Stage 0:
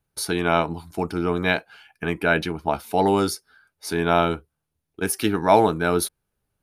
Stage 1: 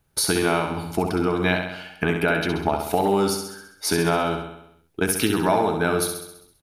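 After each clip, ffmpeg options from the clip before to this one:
ffmpeg -i in.wav -filter_complex "[0:a]acompressor=threshold=-28dB:ratio=5,asplit=2[link_01][link_02];[link_02]aecho=0:1:66|132|198|264|330|396|462|528:0.501|0.291|0.169|0.0978|0.0567|0.0329|0.0191|0.0111[link_03];[link_01][link_03]amix=inputs=2:normalize=0,volume=8.5dB" out.wav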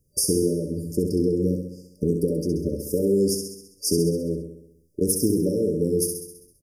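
ffmpeg -i in.wav -af "afftfilt=real='re*(1-between(b*sr/4096,590,4700))':imag='im*(1-between(b*sr/4096,590,4700))':win_size=4096:overlap=0.75,volume=1dB" out.wav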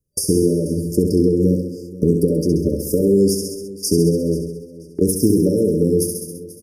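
ffmpeg -i in.wav -filter_complex "[0:a]agate=range=-17dB:threshold=-46dB:ratio=16:detection=peak,acrossover=split=390[link_01][link_02];[link_02]acompressor=threshold=-28dB:ratio=6[link_03];[link_01][link_03]amix=inputs=2:normalize=0,aecho=1:1:485|970:0.119|0.0273,volume=7.5dB" out.wav

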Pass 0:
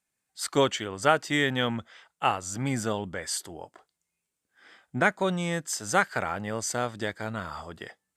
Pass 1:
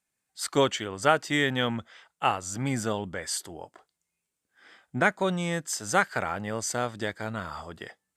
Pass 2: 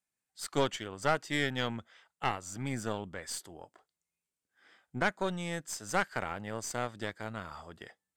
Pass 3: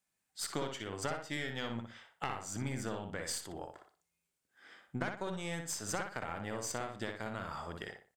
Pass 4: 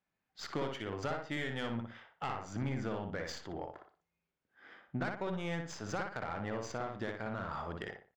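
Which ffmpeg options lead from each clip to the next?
ffmpeg -i in.wav -af anull out.wav
ffmpeg -i in.wav -af "aeval=exprs='(tanh(6.31*val(0)+0.8)-tanh(0.8))/6.31':channel_layout=same,volume=-3dB" out.wav
ffmpeg -i in.wav -filter_complex "[0:a]acompressor=threshold=-39dB:ratio=6,asplit=2[link_01][link_02];[link_02]adelay=60,lowpass=frequency=3300:poles=1,volume=-4.5dB,asplit=2[link_03][link_04];[link_04]adelay=60,lowpass=frequency=3300:poles=1,volume=0.34,asplit=2[link_05][link_06];[link_06]adelay=60,lowpass=frequency=3300:poles=1,volume=0.34,asplit=2[link_07][link_08];[link_08]adelay=60,lowpass=frequency=3300:poles=1,volume=0.34[link_09];[link_03][link_05][link_07][link_09]amix=inputs=4:normalize=0[link_10];[link_01][link_10]amix=inputs=2:normalize=0,volume=4dB" out.wav
ffmpeg -i in.wav -af "aresample=16000,asoftclip=type=tanh:threshold=-29.5dB,aresample=44100,adynamicsmooth=sensitivity=6.5:basefreq=2700,volume=3.5dB" out.wav

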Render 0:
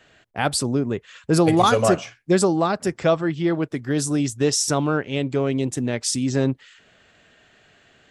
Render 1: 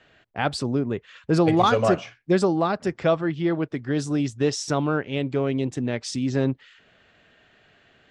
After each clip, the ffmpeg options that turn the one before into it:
ffmpeg -i in.wav -af "lowpass=4400,volume=-2dB" out.wav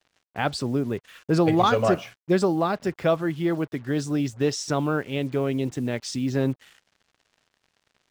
ffmpeg -i in.wav -af "acrusher=bits=7:mix=0:aa=0.5,volume=-1dB" out.wav

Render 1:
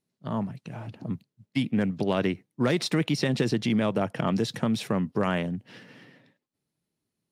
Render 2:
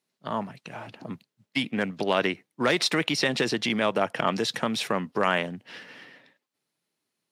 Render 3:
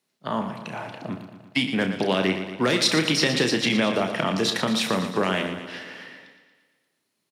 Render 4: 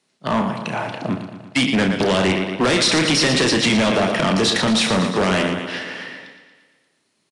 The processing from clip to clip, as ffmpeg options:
ffmpeg -i in.wav -af "highpass=frequency=960:poles=1,highshelf=frequency=5600:gain=-6,volume=8.5dB" out.wav
ffmpeg -i in.wav -filter_complex "[0:a]asplit=2[link_01][link_02];[link_02]aecho=0:1:32|67:0.398|0.168[link_03];[link_01][link_03]amix=inputs=2:normalize=0,acrossover=split=400|3000[link_04][link_05][link_06];[link_05]acompressor=threshold=-28dB:ratio=6[link_07];[link_04][link_07][link_06]amix=inputs=3:normalize=0,asplit=2[link_08][link_09];[link_09]aecho=0:1:116|232|348|464|580|696|812:0.316|0.19|0.114|0.0683|0.041|0.0246|0.0148[link_10];[link_08][link_10]amix=inputs=2:normalize=0,volume=4dB" out.wav
ffmpeg -i in.wav -af "volume=23dB,asoftclip=hard,volume=-23dB,aresample=22050,aresample=44100,volume=9dB" out.wav

